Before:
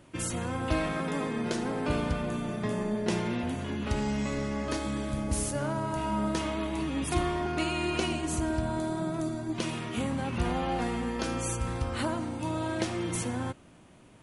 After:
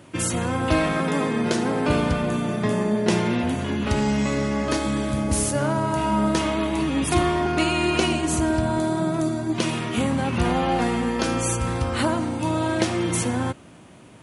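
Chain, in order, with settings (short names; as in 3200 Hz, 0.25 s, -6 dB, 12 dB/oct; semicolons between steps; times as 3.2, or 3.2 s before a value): HPF 70 Hz; gain +8.5 dB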